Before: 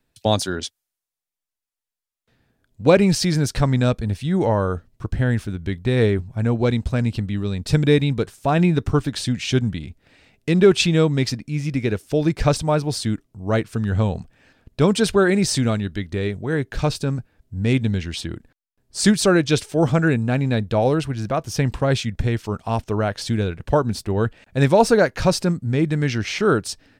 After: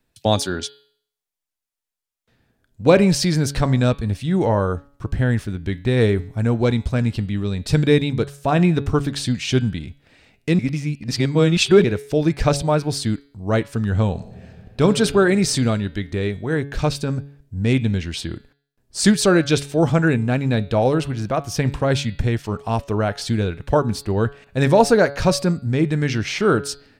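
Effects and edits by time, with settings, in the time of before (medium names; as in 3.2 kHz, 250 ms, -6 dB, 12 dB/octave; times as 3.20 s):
6.00–6.69 s: treble shelf 6.8 kHz +5.5 dB
10.59–11.84 s: reverse
14.13–14.82 s: reverb throw, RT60 2.6 s, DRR 4 dB
whole clip: de-hum 141.1 Hz, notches 34; trim +1 dB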